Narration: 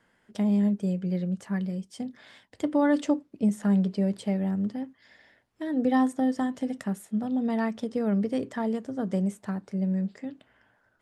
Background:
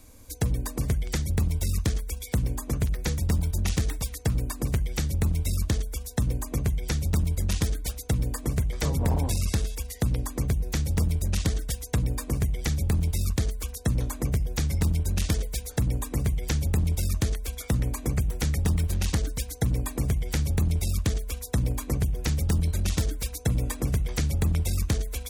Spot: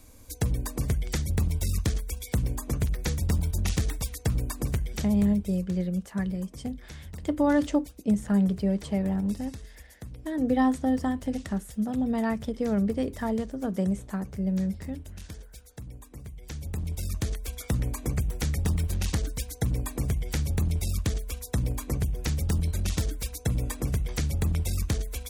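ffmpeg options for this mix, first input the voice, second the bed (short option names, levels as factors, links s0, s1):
-filter_complex "[0:a]adelay=4650,volume=1[s0];[1:a]volume=4.73,afade=t=out:st=4.6:d=0.91:silence=0.16788,afade=t=in:st=16.33:d=1.22:silence=0.188365[s1];[s0][s1]amix=inputs=2:normalize=0"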